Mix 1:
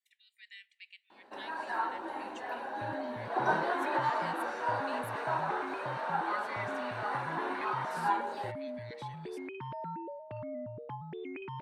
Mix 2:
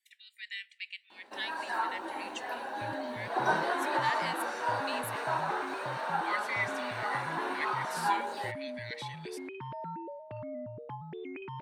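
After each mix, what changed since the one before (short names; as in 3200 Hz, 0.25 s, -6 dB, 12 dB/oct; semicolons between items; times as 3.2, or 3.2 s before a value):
speech +10.5 dB; first sound: add high shelf 3500 Hz +10.5 dB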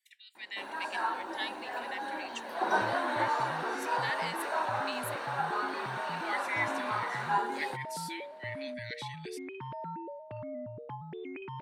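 first sound: entry -0.75 s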